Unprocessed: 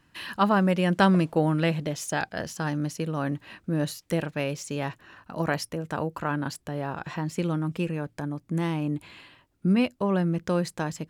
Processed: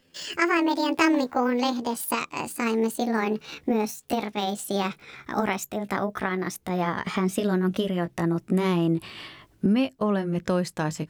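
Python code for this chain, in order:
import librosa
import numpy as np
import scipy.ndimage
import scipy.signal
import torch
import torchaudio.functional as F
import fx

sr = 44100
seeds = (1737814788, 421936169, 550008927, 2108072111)

y = fx.pitch_glide(x, sr, semitones=9.5, runs='ending unshifted')
y = fx.recorder_agc(y, sr, target_db=-15.5, rise_db_per_s=13.0, max_gain_db=30)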